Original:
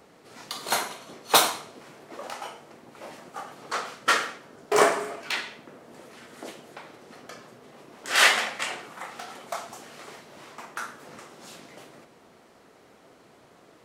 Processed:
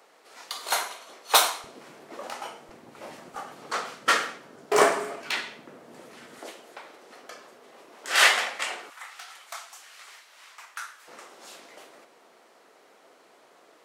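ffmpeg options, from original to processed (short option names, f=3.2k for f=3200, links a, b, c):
-af "asetnsamples=n=441:p=0,asendcmd='1.64 highpass f 160;2.69 highpass f 51;3.35 highpass f 120;6.39 highpass f 380;8.9 highpass f 1400;11.08 highpass f 410',highpass=560"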